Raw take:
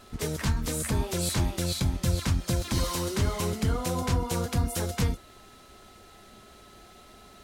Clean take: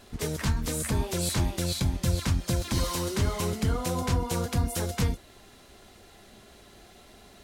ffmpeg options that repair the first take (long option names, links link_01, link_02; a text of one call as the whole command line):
ffmpeg -i in.wav -af "adeclick=threshold=4,bandreject=frequency=1300:width=30" out.wav